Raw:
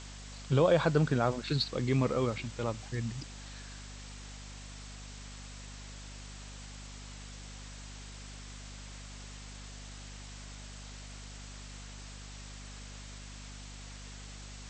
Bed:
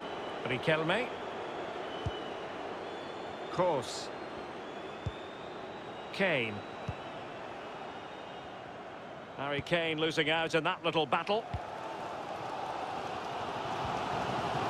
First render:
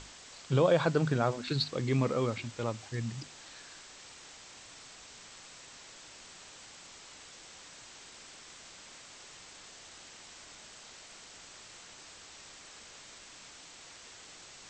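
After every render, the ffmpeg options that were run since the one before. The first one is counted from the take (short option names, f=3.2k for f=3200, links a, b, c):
-af "bandreject=f=50:t=h:w=6,bandreject=f=100:t=h:w=6,bandreject=f=150:t=h:w=6,bandreject=f=200:t=h:w=6,bandreject=f=250:t=h:w=6"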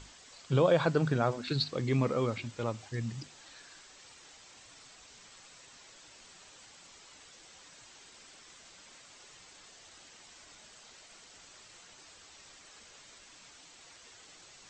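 -af "afftdn=nr=6:nf=-52"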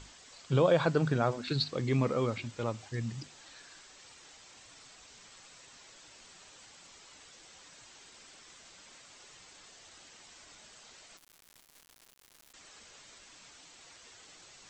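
-filter_complex "[0:a]asettb=1/sr,asplit=3[a][b][c];[a]atrim=end=11.174[d];[b]atrim=start=11.17:end=12.54,asetpts=PTS-STARTPTS,afade=t=in:d=0.004:c=qsin,afade=t=out:st=1.366:d=0.004:c=qsin,acrusher=bits=5:dc=4:mix=0:aa=0.000001[e];[c]atrim=start=12.536[f];[d][e]acrossfade=d=0.004:c1=hsin:c2=qsin[g];[g][f]acrossfade=d=0.004:c1=qsin:c2=hsin"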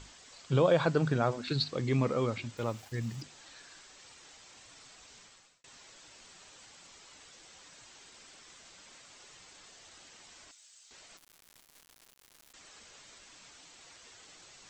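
-filter_complex "[0:a]asettb=1/sr,asplit=3[a][b][c];[a]atrim=end=2.574[d];[b]atrim=start=2.57:end=3.22,asetpts=PTS-STARTPTS,afade=t=in:d=0.004:c=qsin,afade=t=out:st=0.646:d=0.004:c=qsin,aeval=exprs='val(0)*gte(abs(val(0)),0.00266)':c=same[e];[c]atrim=start=3.216[f];[d][e]acrossfade=d=0.004:c1=hsin:c2=qsin[g];[g][f]acrossfade=d=0.004:c1=qsin:c2=hsin,asettb=1/sr,asplit=3[h][i][j];[h]atrim=end=10.514[k];[i]atrim=start=10.51:end=10.91,asetpts=PTS-STARTPTS,afade=t=in:d=0.004:c=qsin,afade=t=out:st=0.396:d=0.004:c=qsin,aderivative[l];[j]atrim=start=10.906[m];[k][l]acrossfade=d=0.004:c1=hsin:c2=qsin[n];[n][m]acrossfade=d=0.004:c1=qsin:c2=hsin,asplit=2[o][p];[o]atrim=end=5.64,asetpts=PTS-STARTPTS,afade=t=out:st=5.18:d=0.46[q];[p]atrim=start=5.64,asetpts=PTS-STARTPTS,afade=t=in:d=0.004:c=hsin[r];[q][r]concat=n=2:v=0:a=1"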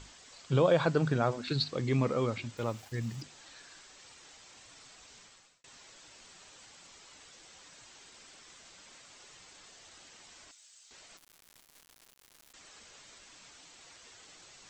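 -af anull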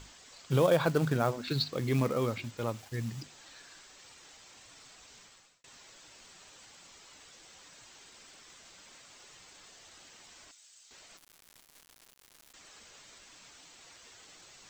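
-af "acrusher=bits=5:mode=log:mix=0:aa=0.000001"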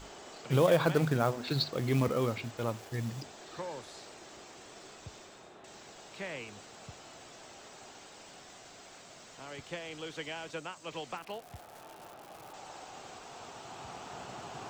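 -filter_complex "[1:a]volume=-11dB[a];[0:a][a]amix=inputs=2:normalize=0"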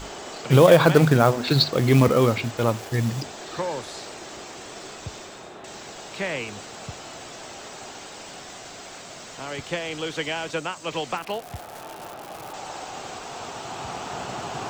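-af "volume=12dB,alimiter=limit=-3dB:level=0:latency=1"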